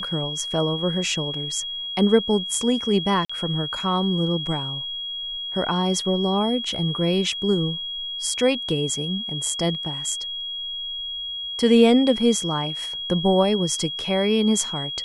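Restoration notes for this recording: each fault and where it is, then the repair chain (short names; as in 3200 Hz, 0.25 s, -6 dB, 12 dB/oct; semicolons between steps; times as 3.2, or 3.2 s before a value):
tone 3300 Hz -28 dBFS
3.25–3.29 gap 45 ms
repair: notch 3300 Hz, Q 30; interpolate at 3.25, 45 ms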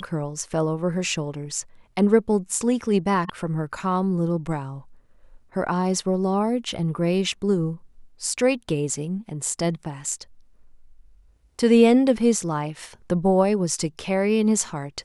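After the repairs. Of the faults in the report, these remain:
none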